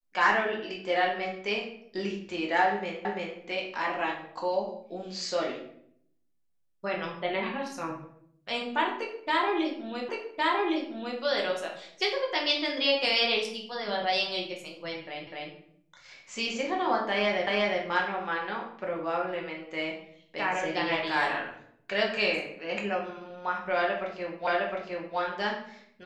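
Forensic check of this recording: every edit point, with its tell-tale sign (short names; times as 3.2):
3.05 repeat of the last 0.34 s
10.09 repeat of the last 1.11 s
15.27 repeat of the last 0.25 s
17.47 repeat of the last 0.36 s
24.47 repeat of the last 0.71 s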